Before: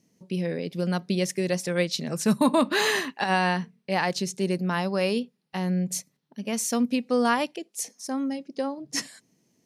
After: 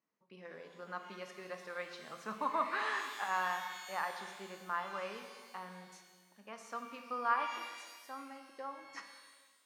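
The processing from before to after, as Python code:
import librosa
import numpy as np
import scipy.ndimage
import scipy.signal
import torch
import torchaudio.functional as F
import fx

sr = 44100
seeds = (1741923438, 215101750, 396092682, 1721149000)

y = fx.bandpass_q(x, sr, hz=1200.0, q=3.5)
y = fx.rev_shimmer(y, sr, seeds[0], rt60_s=1.5, semitones=12, shimmer_db=-8, drr_db=5.0)
y = y * librosa.db_to_amplitude(-3.0)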